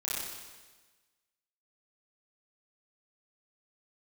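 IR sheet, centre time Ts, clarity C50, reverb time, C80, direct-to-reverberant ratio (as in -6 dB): 99 ms, -3.0 dB, 1.3 s, 0.5 dB, -8.5 dB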